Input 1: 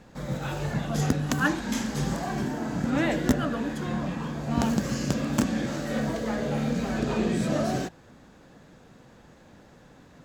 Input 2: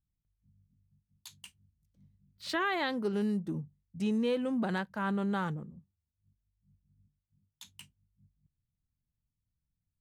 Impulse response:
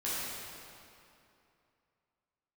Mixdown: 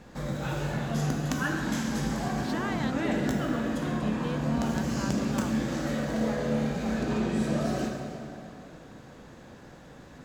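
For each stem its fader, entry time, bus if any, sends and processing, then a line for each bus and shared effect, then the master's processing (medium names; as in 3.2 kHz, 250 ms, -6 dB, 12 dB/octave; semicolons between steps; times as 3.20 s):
-2.0 dB, 0.00 s, send -3 dB, compression 2.5:1, threshold -33 dBFS, peak gain reduction 11.5 dB
-5.0 dB, 0.00 s, no send, none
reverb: on, RT60 2.7 s, pre-delay 9 ms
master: none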